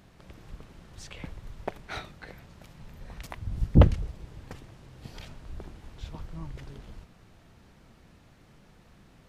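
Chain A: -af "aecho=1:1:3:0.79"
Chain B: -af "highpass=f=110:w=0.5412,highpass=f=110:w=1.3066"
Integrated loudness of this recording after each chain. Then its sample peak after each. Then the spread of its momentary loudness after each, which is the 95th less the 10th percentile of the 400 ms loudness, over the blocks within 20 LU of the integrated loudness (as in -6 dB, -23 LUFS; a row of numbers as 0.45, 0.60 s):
-28.5, -33.0 LUFS; -1.0, -7.0 dBFS; 25, 25 LU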